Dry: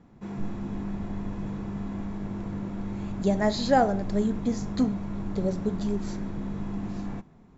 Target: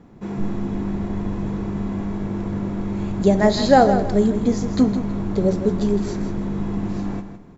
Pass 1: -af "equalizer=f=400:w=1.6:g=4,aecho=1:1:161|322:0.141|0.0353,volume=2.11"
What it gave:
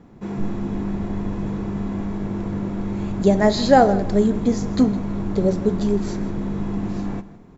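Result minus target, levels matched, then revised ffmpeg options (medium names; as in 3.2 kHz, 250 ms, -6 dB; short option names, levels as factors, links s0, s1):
echo-to-direct -7 dB
-af "equalizer=f=400:w=1.6:g=4,aecho=1:1:161|322|483:0.316|0.0791|0.0198,volume=2.11"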